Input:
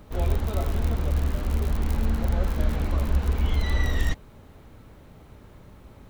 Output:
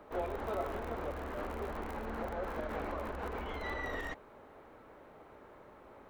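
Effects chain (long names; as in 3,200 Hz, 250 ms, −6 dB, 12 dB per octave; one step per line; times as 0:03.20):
brickwall limiter −19.5 dBFS, peak gain reduction 8 dB
three-way crossover with the lows and the highs turned down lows −21 dB, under 330 Hz, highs −16 dB, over 2,100 Hz
level +1.5 dB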